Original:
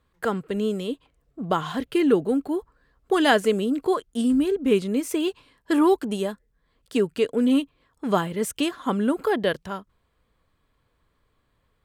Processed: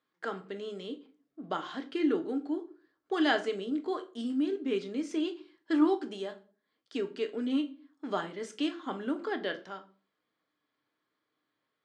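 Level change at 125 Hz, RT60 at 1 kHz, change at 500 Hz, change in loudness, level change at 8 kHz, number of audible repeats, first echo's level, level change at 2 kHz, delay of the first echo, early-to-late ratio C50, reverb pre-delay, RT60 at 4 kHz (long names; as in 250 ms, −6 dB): below −15 dB, 0.35 s, −10.5 dB, −9.0 dB, below −15 dB, no echo audible, no echo audible, −7.5 dB, no echo audible, 16.0 dB, 6 ms, 0.30 s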